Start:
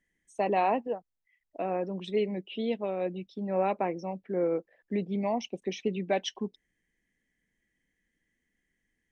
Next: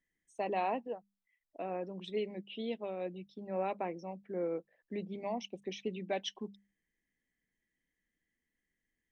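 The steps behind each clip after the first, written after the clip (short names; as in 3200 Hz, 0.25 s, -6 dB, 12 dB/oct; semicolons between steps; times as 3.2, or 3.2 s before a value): dynamic EQ 3400 Hz, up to +4 dB, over -53 dBFS, Q 1.9; notches 50/100/150/200 Hz; gain -7.5 dB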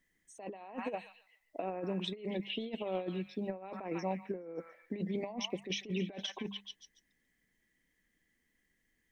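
delay with a stepping band-pass 0.141 s, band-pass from 1500 Hz, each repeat 0.7 oct, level -8.5 dB; negative-ratio compressor -41 dBFS, ratio -0.5; gain +4 dB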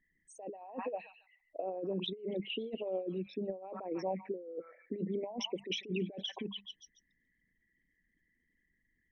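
formant sharpening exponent 2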